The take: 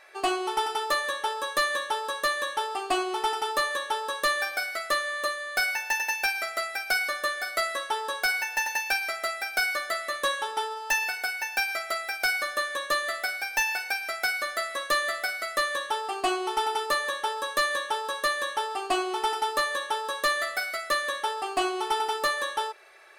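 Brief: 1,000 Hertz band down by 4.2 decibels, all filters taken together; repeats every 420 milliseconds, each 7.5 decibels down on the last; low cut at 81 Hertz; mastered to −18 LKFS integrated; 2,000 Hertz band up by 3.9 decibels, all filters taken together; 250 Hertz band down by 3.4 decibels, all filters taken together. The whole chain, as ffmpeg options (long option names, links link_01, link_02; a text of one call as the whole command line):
ffmpeg -i in.wav -af "highpass=81,equalizer=frequency=250:width_type=o:gain=-6,equalizer=frequency=1000:width_type=o:gain=-7,equalizer=frequency=2000:width_type=o:gain=7,aecho=1:1:420|840|1260|1680|2100:0.422|0.177|0.0744|0.0312|0.0131,volume=7dB" out.wav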